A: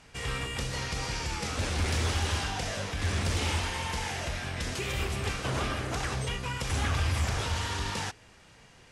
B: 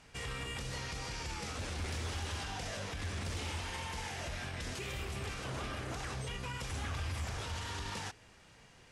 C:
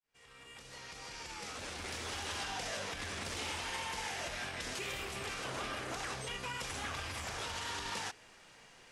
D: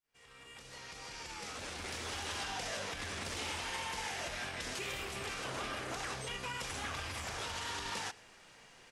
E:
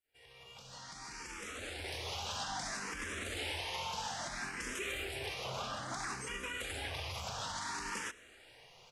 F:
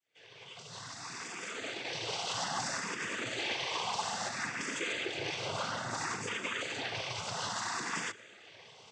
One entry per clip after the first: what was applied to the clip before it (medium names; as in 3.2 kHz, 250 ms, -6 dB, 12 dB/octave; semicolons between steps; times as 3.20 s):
peak limiter -27.5 dBFS, peak gain reduction 6.5 dB; trim -4 dB
fade-in on the opening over 2.37 s; peaking EQ 68 Hz -14 dB 3 oct; trim +3 dB
delay 109 ms -23 dB
barber-pole phaser +0.6 Hz; trim +2.5 dB
noise-vocoded speech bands 16; trim +5 dB